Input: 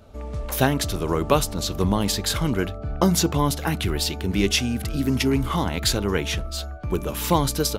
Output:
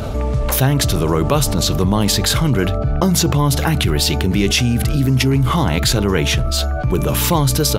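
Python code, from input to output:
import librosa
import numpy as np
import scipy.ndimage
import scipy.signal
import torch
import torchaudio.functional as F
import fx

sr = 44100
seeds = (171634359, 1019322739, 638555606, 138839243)

y = fx.peak_eq(x, sr, hz=130.0, db=11.0, octaves=0.35)
y = fx.env_flatten(y, sr, amount_pct=70)
y = y * librosa.db_to_amplitude(-1.0)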